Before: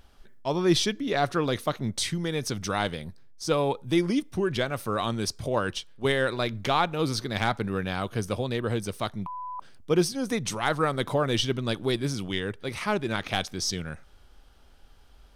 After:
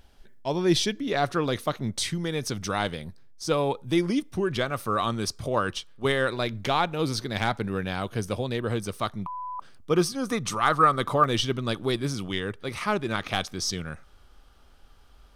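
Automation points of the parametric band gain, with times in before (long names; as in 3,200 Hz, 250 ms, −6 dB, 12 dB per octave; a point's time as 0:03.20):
parametric band 1,200 Hz 0.26 octaves
−8 dB
from 0:00.97 +1 dB
from 0:04.53 +7 dB
from 0:06.29 −1.5 dB
from 0:08.68 +6.5 dB
from 0:09.94 +14.5 dB
from 0:11.24 +6 dB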